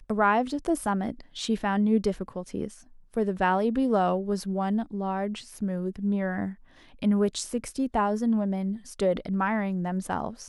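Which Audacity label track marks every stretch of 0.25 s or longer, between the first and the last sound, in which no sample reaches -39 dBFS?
2.740000	3.140000	silence
6.530000	7.020000	silence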